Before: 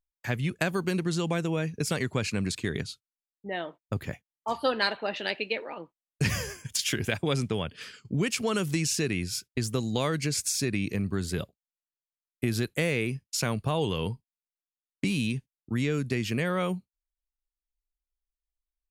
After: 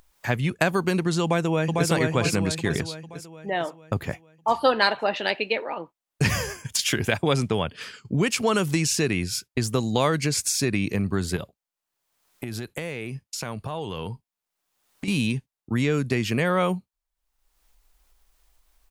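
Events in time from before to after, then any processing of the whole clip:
1.23–1.90 s: echo throw 450 ms, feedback 50%, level -2.5 dB
11.36–15.08 s: compression, threshold -33 dBFS
whole clip: peaking EQ 870 Hz +5.5 dB 1.3 oct; upward compressor, threshold -46 dBFS; trim +4 dB

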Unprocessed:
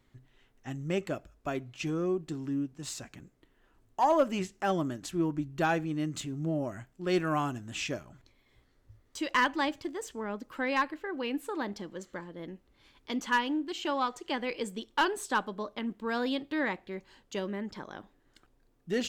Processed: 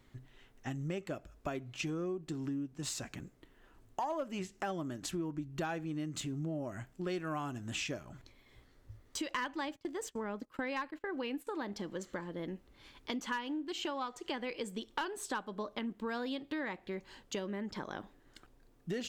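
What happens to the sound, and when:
9.38–11.47 s: gate -46 dBFS, range -20 dB
whole clip: compression 5:1, threshold -40 dBFS; trim +4 dB

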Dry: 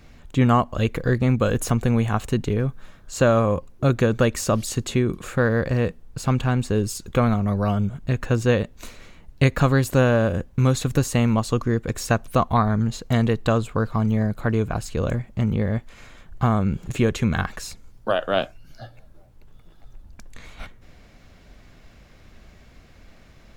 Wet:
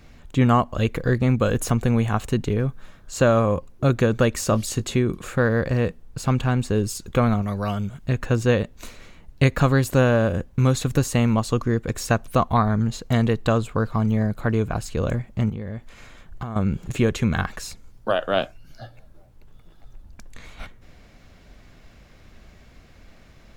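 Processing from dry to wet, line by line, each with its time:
4.47–4.97 s: doubling 19 ms -12.5 dB
7.42–8.07 s: tilt shelf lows -4.5 dB, about 1.4 kHz
15.49–16.56 s: compression 10:1, threshold -26 dBFS

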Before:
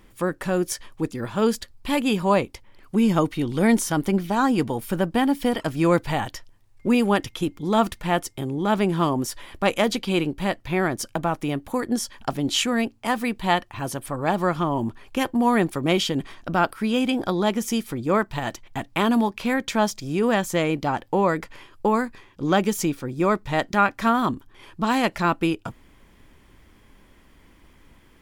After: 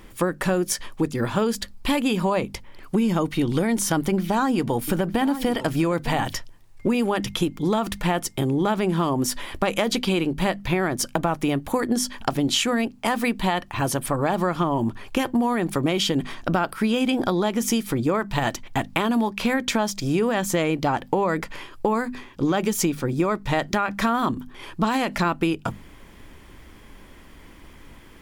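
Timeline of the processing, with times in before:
3.97–6.35 s: delay 906 ms -15.5 dB
whole clip: hum notches 50/100/150/200/250 Hz; peak limiter -13 dBFS; compression, threshold -26 dBFS; trim +7.5 dB

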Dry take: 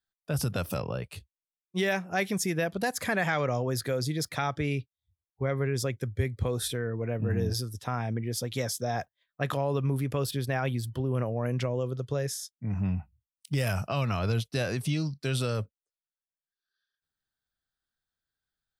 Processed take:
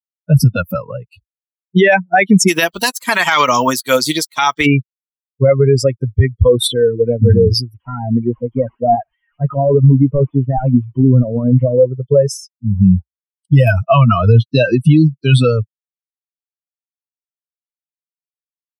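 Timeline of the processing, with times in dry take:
2.47–4.65 s: spectral contrast reduction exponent 0.42
7.74–11.88 s: one-bit delta coder 16 kbps, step -42.5 dBFS
whole clip: expander on every frequency bin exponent 3; low-pass 2.4 kHz 6 dB/octave; loudness maximiser +30.5 dB; trim -1 dB

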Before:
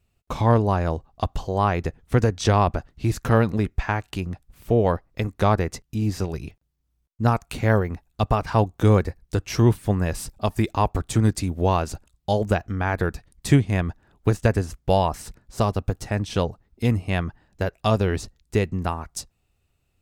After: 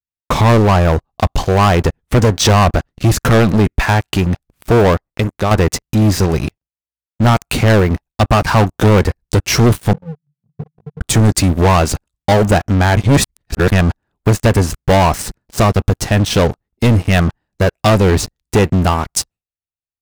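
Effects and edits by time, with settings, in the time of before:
4.82–5.51 s: fade out, to -13.5 dB
9.93–11.01 s: Butterworth band-pass 150 Hz, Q 7.5
12.97–13.72 s: reverse
whole clip: gate with hold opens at -50 dBFS; bass shelf 64 Hz -5 dB; waveshaping leveller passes 5; trim -1.5 dB

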